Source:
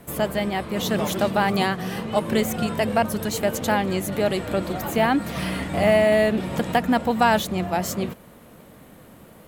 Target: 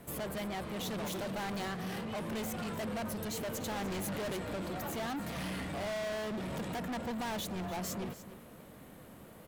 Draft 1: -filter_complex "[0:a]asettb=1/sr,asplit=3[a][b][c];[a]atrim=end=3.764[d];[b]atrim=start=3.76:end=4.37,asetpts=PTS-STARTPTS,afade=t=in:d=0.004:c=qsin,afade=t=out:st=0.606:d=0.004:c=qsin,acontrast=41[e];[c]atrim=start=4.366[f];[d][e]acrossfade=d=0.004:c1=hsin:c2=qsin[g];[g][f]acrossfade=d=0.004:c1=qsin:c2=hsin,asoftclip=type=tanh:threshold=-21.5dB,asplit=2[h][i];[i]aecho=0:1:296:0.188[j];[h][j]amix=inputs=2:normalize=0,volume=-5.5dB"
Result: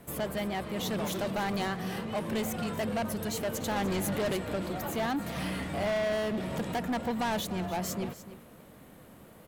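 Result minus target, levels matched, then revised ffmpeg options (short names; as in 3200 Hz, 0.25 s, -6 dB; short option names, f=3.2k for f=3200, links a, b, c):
soft clip: distortion -5 dB
-filter_complex "[0:a]asettb=1/sr,asplit=3[a][b][c];[a]atrim=end=3.764[d];[b]atrim=start=3.76:end=4.37,asetpts=PTS-STARTPTS,afade=t=in:d=0.004:c=qsin,afade=t=out:st=0.606:d=0.004:c=qsin,acontrast=41[e];[c]atrim=start=4.366[f];[d][e]acrossfade=d=0.004:c1=hsin:c2=qsin[g];[g][f]acrossfade=d=0.004:c1=qsin:c2=hsin,asoftclip=type=tanh:threshold=-30dB,asplit=2[h][i];[i]aecho=0:1:296:0.188[j];[h][j]amix=inputs=2:normalize=0,volume=-5.5dB"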